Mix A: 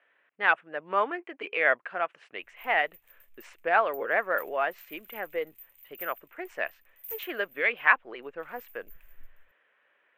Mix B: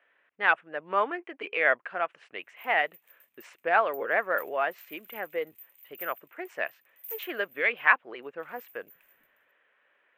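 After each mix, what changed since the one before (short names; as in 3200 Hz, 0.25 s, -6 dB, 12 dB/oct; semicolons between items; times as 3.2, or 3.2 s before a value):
background: add HPF 230 Hz 12 dB/oct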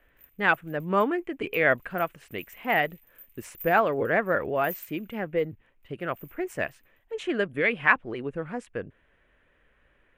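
speech: remove BPF 610–3800 Hz; background: entry -2.40 s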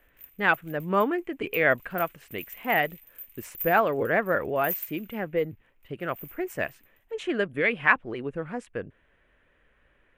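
background +7.5 dB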